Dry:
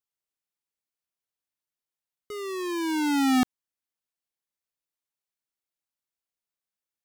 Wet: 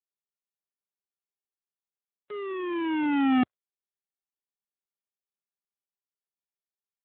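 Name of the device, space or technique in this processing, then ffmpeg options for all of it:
mobile call with aggressive noise cancelling: -filter_complex "[0:a]highpass=48,asplit=3[link_01][link_02][link_03];[link_01]afade=type=out:start_time=2.31:duration=0.02[link_04];[link_02]adynamicequalizer=threshold=0.00251:dfrequency=590:dqfactor=2.5:tfrequency=590:tqfactor=2.5:attack=5:release=100:ratio=0.375:range=3:mode=boostabove:tftype=bell,afade=type=in:start_time=2.31:duration=0.02,afade=type=out:start_time=2.94:duration=0.02[link_05];[link_03]afade=type=in:start_time=2.94:duration=0.02[link_06];[link_04][link_05][link_06]amix=inputs=3:normalize=0,highpass=frequency=110:poles=1,afftdn=noise_reduction=13:noise_floor=-49" -ar 8000 -c:a libopencore_amrnb -b:a 7950

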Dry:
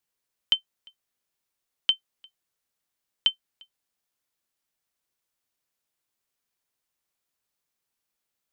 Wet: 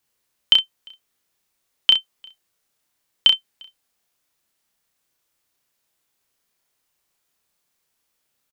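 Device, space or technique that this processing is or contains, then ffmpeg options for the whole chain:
slapback doubling: -filter_complex "[0:a]asplit=3[link_01][link_02][link_03];[link_02]adelay=32,volume=-3.5dB[link_04];[link_03]adelay=64,volume=-11.5dB[link_05];[link_01][link_04][link_05]amix=inputs=3:normalize=0,volume=7.5dB"

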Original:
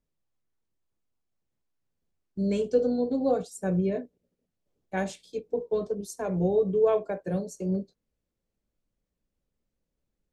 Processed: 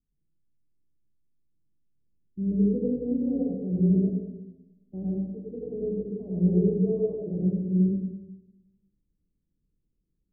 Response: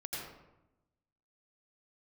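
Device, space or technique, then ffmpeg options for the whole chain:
next room: -filter_complex "[0:a]lowpass=frequency=340:width=0.5412,lowpass=frequency=340:width=1.3066[link_01];[1:a]atrim=start_sample=2205[link_02];[link_01][link_02]afir=irnorm=-1:irlink=0,volume=3.5dB"

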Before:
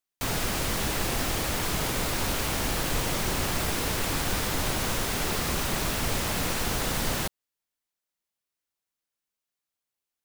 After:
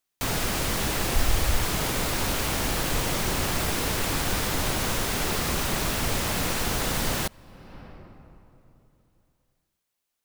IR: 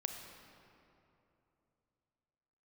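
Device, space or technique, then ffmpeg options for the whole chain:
ducked reverb: -filter_complex "[0:a]asplit=3[link_01][link_02][link_03];[link_01]afade=type=out:start_time=1.14:duration=0.02[link_04];[link_02]asubboost=boost=7.5:cutoff=87,afade=type=in:start_time=1.14:duration=0.02,afade=type=out:start_time=1.63:duration=0.02[link_05];[link_03]afade=type=in:start_time=1.63:duration=0.02[link_06];[link_04][link_05][link_06]amix=inputs=3:normalize=0,asplit=3[link_07][link_08][link_09];[1:a]atrim=start_sample=2205[link_10];[link_08][link_10]afir=irnorm=-1:irlink=0[link_11];[link_09]apad=whole_len=451812[link_12];[link_11][link_12]sidechaincompress=threshold=-49dB:ratio=6:attack=16:release=358,volume=0dB[link_13];[link_07][link_13]amix=inputs=2:normalize=0,volume=1dB"

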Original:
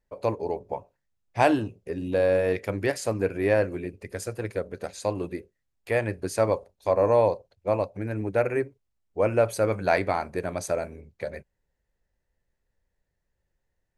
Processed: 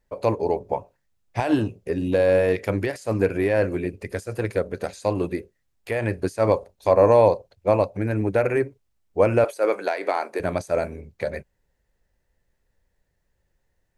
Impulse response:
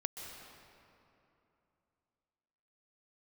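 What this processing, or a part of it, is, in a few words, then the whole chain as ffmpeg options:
de-esser from a sidechain: -filter_complex "[0:a]asplit=2[link_01][link_02];[link_02]highpass=5200,apad=whole_len=616129[link_03];[link_01][link_03]sidechaincompress=threshold=-47dB:ratio=12:attack=1.4:release=78,asettb=1/sr,asplit=3[link_04][link_05][link_06];[link_04]atrim=end=9.444[link_07];[link_05]atrim=start=9.44:end=10.4,asetpts=PTS-STARTPTS,afade=type=in:duration=0.004:curve=qsin,afade=type=out:start_time=0.956:duration=0.004:curve=qsin,highpass=frequency=330:width=0.5412,highpass=frequency=330:width=1.3066[link_08];[link_06]atrim=start=10.396[link_09];[link_07][link_08]acrossfade=duration=0.004:curve1=hsin:curve2=qsin[link_10];[link_10][link_09]acrossfade=duration=0.004:curve1=qsin:curve2=hsin,volume=6.5dB"

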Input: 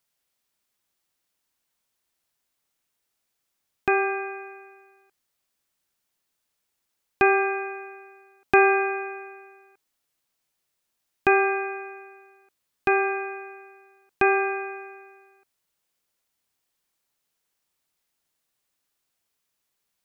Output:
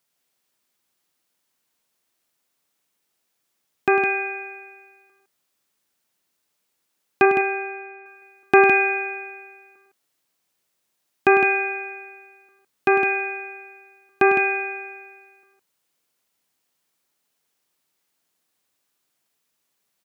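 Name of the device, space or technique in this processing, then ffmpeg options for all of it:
filter by subtraction: -filter_complex "[0:a]asettb=1/sr,asplit=3[link_01][link_02][link_03];[link_01]atrim=end=7.254[link_04];[link_02]atrim=start=7.25:end=8.06,asetpts=PTS-STARTPTS,afade=type=in:duration=0.004:curve=qsin,afade=type=out:start_time=0.806:duration=0.004:curve=qsin,lowpass=frequency=1500:poles=1[link_05];[link_03]atrim=start=8.056[link_06];[link_04][link_05]acrossfade=duration=0.004:curve1=hsin:curve2=qsin[link_07];[link_07][link_06]acrossfade=duration=0.004:curve1=qsin:curve2=hsin,aecho=1:1:102|160.3:0.316|0.501,asplit=2[link_08][link_09];[link_09]lowpass=220,volume=-1[link_10];[link_08][link_10]amix=inputs=2:normalize=0,volume=2.5dB"

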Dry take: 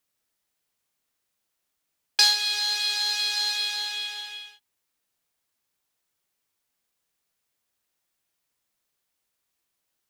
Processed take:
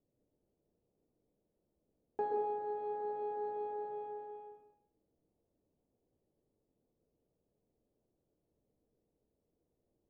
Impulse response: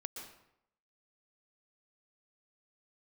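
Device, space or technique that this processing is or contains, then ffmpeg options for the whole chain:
next room: -filter_complex "[0:a]lowpass=frequency=530:width=0.5412,lowpass=frequency=530:width=1.3066[link_01];[1:a]atrim=start_sample=2205[link_02];[link_01][link_02]afir=irnorm=-1:irlink=0,volume=15dB"

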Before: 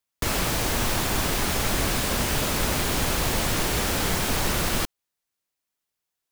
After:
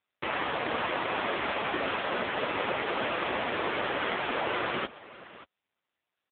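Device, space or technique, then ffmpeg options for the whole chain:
satellite phone: -af "highpass=350,lowpass=3100,aecho=1:1:583:0.133,volume=3.5dB" -ar 8000 -c:a libopencore_amrnb -b:a 5900

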